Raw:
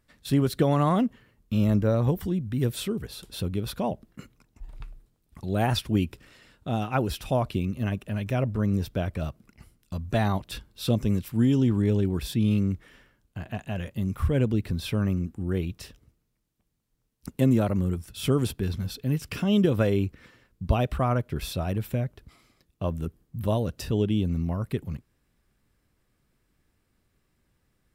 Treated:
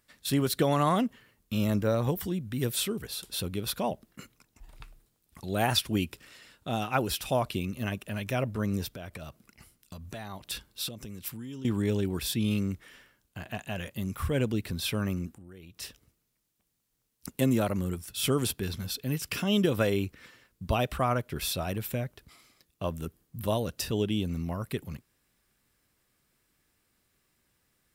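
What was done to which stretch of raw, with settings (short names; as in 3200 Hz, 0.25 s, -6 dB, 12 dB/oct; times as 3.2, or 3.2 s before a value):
8.89–11.65 compressor 8:1, threshold -33 dBFS
15.33–15.82 compressor, threshold -42 dBFS
whole clip: tilt +2 dB/oct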